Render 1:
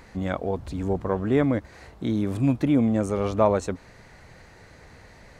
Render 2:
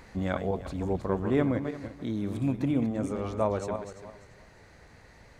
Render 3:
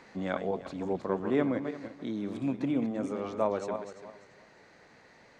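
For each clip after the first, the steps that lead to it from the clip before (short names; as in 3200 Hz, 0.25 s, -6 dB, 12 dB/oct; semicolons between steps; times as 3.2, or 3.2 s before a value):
regenerating reverse delay 0.171 s, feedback 45%, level -7 dB; vocal rider 2 s; gain -7 dB
three-band isolator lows -21 dB, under 160 Hz, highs -18 dB, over 7600 Hz; gain -1 dB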